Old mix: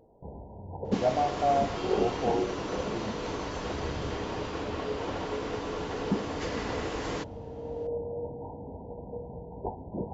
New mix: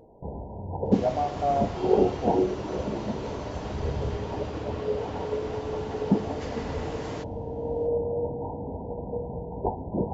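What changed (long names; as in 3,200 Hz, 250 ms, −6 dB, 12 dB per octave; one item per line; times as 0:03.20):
first sound +7.0 dB
second sound −4.5 dB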